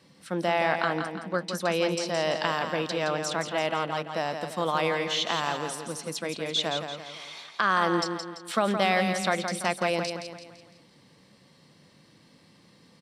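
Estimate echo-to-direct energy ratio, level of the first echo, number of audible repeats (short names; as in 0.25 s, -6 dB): -6.0 dB, -7.0 dB, 5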